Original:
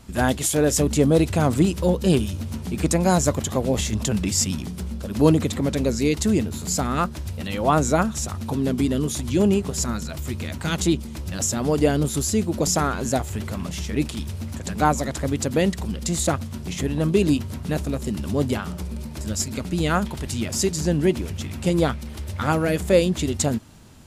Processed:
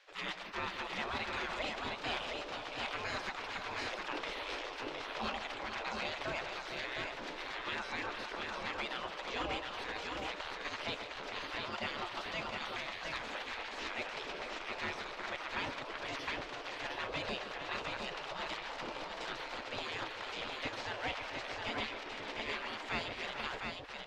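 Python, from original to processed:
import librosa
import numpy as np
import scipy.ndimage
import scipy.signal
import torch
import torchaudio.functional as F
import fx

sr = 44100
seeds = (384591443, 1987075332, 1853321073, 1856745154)

p1 = fx.spec_gate(x, sr, threshold_db=-25, keep='weak')
p2 = fx.high_shelf(p1, sr, hz=6700.0, db=-12.0)
p3 = fx.rider(p2, sr, range_db=10, speed_s=0.5)
p4 = p2 + (p3 * librosa.db_to_amplitude(-1.5))
p5 = np.clip(p4, -10.0 ** (-28.0 / 20.0), 10.0 ** (-28.0 / 20.0))
p6 = fx.air_absorb(p5, sr, metres=200.0)
p7 = p6 + fx.echo_multitap(p6, sr, ms=(140, 449, 711), db=(-12.5, -10.0, -4.0), dry=0)
y = p7 * librosa.db_to_amplitude(-1.5)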